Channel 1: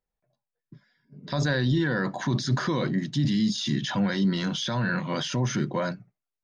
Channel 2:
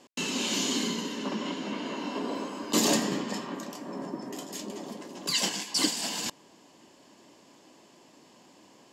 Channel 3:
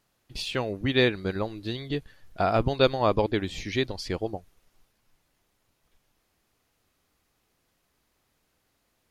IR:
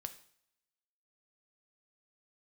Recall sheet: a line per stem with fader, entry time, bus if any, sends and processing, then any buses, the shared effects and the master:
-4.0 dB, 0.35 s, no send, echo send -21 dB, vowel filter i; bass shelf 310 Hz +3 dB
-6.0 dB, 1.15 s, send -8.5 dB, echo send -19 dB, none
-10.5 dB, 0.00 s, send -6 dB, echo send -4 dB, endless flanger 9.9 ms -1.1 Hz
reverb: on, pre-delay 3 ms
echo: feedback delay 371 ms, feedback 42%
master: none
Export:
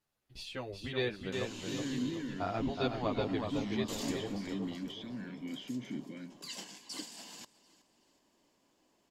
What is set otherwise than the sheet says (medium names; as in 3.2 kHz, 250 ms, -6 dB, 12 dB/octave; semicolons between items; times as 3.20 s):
stem 2 -6.0 dB -> -17.5 dB; reverb return -8.0 dB